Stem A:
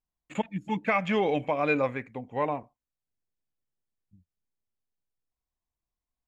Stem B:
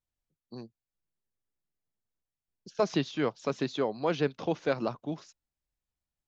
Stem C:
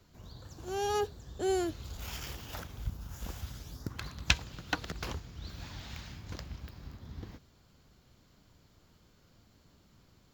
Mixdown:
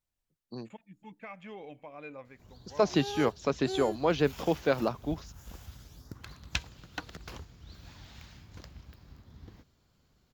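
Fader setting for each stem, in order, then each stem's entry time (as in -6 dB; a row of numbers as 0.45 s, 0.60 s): -19.5 dB, +2.0 dB, -6.0 dB; 0.35 s, 0.00 s, 2.25 s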